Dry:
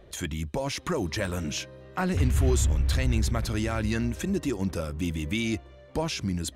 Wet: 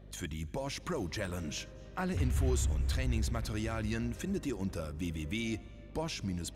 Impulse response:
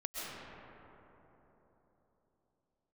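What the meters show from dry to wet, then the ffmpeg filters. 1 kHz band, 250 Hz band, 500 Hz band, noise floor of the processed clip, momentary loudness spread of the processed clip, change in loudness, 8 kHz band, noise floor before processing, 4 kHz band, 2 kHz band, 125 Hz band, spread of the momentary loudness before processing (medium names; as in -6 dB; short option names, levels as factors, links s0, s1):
-7.5 dB, -7.5 dB, -7.5 dB, -50 dBFS, 9 LU, -7.5 dB, -7.5 dB, -50 dBFS, -7.5 dB, -7.5 dB, -7.5 dB, 9 LU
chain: -filter_complex "[0:a]aeval=exprs='val(0)+0.00708*(sin(2*PI*50*n/s)+sin(2*PI*2*50*n/s)/2+sin(2*PI*3*50*n/s)/3+sin(2*PI*4*50*n/s)/4+sin(2*PI*5*50*n/s)/5)':c=same,asplit=2[s0][s1];[1:a]atrim=start_sample=2205,adelay=101[s2];[s1][s2]afir=irnorm=-1:irlink=0,volume=0.075[s3];[s0][s3]amix=inputs=2:normalize=0,volume=0.422"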